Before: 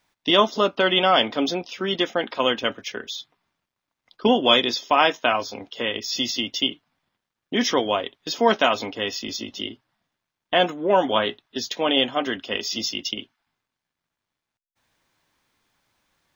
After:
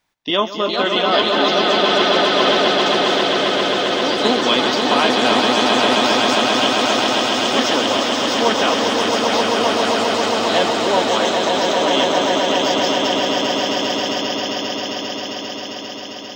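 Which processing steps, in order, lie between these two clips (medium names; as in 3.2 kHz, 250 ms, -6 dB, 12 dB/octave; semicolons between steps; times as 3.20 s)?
echo with a slow build-up 133 ms, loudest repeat 8, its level -5 dB; ever faster or slower copies 457 ms, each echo +3 st, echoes 3, each echo -6 dB; trim -1 dB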